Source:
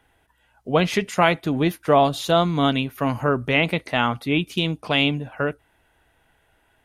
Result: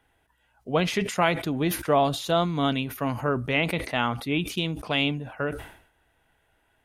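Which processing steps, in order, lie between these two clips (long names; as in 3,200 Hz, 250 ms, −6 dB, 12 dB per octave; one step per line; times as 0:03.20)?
level that may fall only so fast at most 93 dB per second
level −5 dB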